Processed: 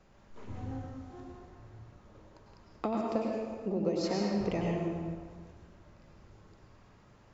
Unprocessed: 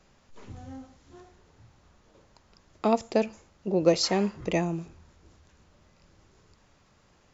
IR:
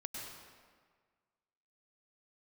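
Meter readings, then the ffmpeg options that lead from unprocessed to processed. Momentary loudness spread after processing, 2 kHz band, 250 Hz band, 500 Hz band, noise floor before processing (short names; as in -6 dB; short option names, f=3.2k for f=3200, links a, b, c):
21 LU, -8.0 dB, -3.5 dB, -6.5 dB, -63 dBFS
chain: -filter_complex "[0:a]highshelf=f=2.8k:g=-10,acompressor=threshold=-30dB:ratio=12[a];[1:a]atrim=start_sample=2205[b];[a][b]afir=irnorm=-1:irlink=0,volume=4.5dB"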